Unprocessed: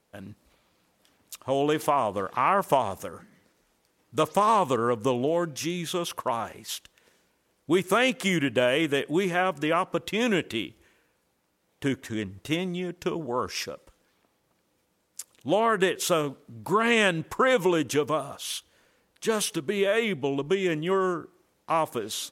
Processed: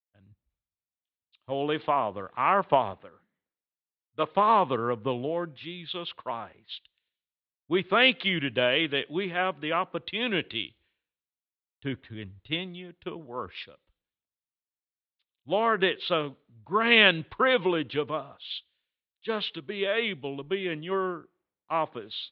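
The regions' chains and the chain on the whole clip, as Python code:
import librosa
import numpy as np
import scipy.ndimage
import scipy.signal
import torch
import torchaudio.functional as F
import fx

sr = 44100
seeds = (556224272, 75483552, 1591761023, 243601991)

y = fx.chain(x, sr, fx.lowpass(hz=3300.0, slope=12),
    fx.low_shelf(hz=120.0, db=-10.5),
    fx.quant_companded(bits=6), at=(2.93, 4.32))
y = scipy.signal.sosfilt(scipy.signal.butter(12, 4000.0, 'lowpass', fs=sr, output='sos'), y)
y = fx.high_shelf(y, sr, hz=3000.0, db=9.5)
y = fx.band_widen(y, sr, depth_pct=100)
y = F.gain(torch.from_numpy(y), -4.5).numpy()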